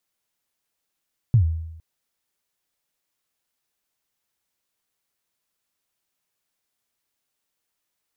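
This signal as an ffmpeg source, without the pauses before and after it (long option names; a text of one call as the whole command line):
ffmpeg -f lavfi -i "aevalsrc='0.316*pow(10,-3*t/0.88)*sin(2*PI*(130*0.098/log(81/130)*(exp(log(81/130)*min(t,0.098)/0.098)-1)+81*max(t-0.098,0)))':duration=0.46:sample_rate=44100" out.wav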